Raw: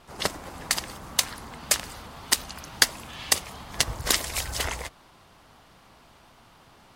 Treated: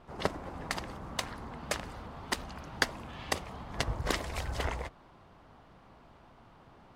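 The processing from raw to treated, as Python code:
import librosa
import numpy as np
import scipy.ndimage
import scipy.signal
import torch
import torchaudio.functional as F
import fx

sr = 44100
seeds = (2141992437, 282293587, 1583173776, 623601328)

y = fx.lowpass(x, sr, hz=1000.0, slope=6)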